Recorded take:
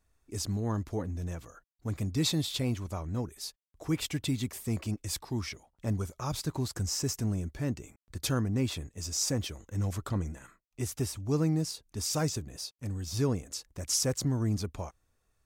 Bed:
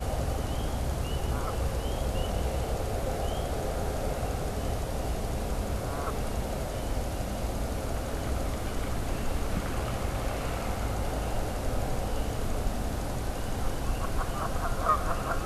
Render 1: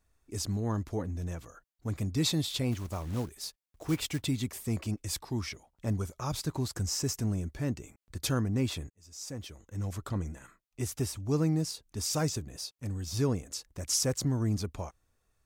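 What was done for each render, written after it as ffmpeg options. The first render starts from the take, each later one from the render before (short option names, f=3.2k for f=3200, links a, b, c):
-filter_complex "[0:a]asplit=3[a][b][c];[a]afade=t=out:st=2.71:d=0.02[d];[b]acrusher=bits=4:mode=log:mix=0:aa=0.000001,afade=t=in:st=2.71:d=0.02,afade=t=out:st=4.25:d=0.02[e];[c]afade=t=in:st=4.25:d=0.02[f];[d][e][f]amix=inputs=3:normalize=0,asplit=2[g][h];[g]atrim=end=8.9,asetpts=PTS-STARTPTS,afade=t=out:st=8.896:d=0.004:c=hsin[i];[h]atrim=start=8.9,asetpts=PTS-STARTPTS,afade=t=in:d=2.03:c=qsin[j];[i][j]concat=n=2:v=0:a=1"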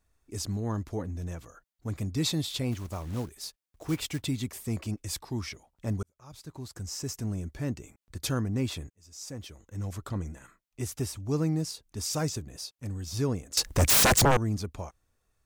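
-filter_complex "[0:a]asettb=1/sr,asplit=3[a][b][c];[a]atrim=end=13.574[d];[b]atrim=start=13.57:end=14.37,asetpts=PTS-STARTPTS,afade=t=in:d=0.004:c=qsin,afade=t=out:st=0.796:d=0.004:c=qsin,aeval=exprs='0.141*sin(PI/2*7.08*val(0)/0.141)':c=same[e];[c]atrim=start=14.366[f];[d][e]acrossfade=d=0.004:c1=hsin:c2=qsin[g];[g][f]acrossfade=d=0.004:c1=qsin:c2=hsin,asplit=2[h][i];[h]atrim=end=6.03,asetpts=PTS-STARTPTS,afade=t=out:st=6.026:d=0.004:c=hsin[j];[i]atrim=start=6.03,asetpts=PTS-STARTPTS,afade=t=in:d=1.55[k];[j][k]concat=n=2:v=0:a=1"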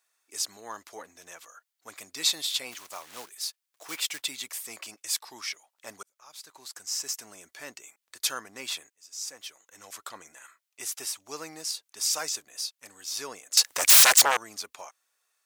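-af "highpass=580,tiltshelf=f=790:g=-7"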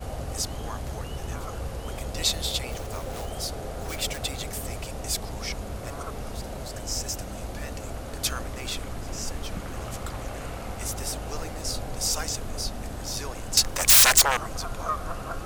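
-filter_complex "[1:a]volume=-3.5dB[a];[0:a][a]amix=inputs=2:normalize=0"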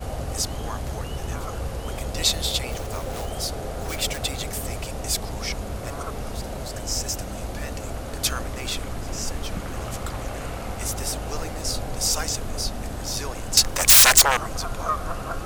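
-af "volume=3.5dB,alimiter=limit=-3dB:level=0:latency=1"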